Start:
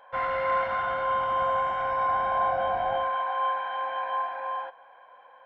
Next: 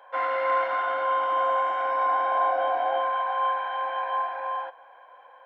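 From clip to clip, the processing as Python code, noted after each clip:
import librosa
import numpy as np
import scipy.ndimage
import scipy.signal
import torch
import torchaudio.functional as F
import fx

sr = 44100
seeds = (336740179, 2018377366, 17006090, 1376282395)

y = scipy.signal.sosfilt(scipy.signal.ellip(4, 1.0, 60, 280.0, 'highpass', fs=sr, output='sos'), x)
y = F.gain(torch.from_numpy(y), 2.0).numpy()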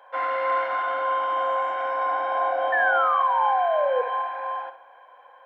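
y = fx.spec_paint(x, sr, seeds[0], shape='fall', start_s=2.72, length_s=1.3, low_hz=480.0, high_hz=1800.0, level_db=-23.0)
y = fx.room_flutter(y, sr, wall_m=11.2, rt60_s=0.38)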